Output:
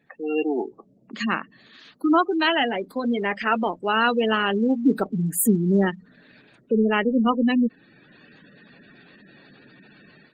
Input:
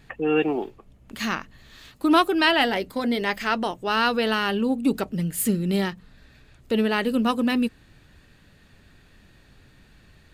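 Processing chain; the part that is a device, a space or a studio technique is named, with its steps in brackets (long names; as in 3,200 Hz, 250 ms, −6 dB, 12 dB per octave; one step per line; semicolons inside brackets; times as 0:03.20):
noise-suppressed video call (high-pass filter 170 Hz 24 dB per octave; gate on every frequency bin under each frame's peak −15 dB strong; automatic gain control gain up to 14.5 dB; level −6 dB; Opus 20 kbit/s 48,000 Hz)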